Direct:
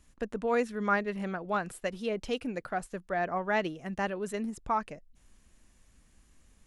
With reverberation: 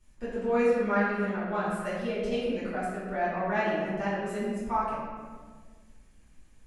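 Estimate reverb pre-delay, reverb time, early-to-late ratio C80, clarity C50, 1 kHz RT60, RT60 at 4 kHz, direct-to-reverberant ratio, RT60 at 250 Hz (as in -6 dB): 3 ms, 1.6 s, 1.0 dB, -1.5 dB, 1.4 s, 0.90 s, -13.5 dB, 2.0 s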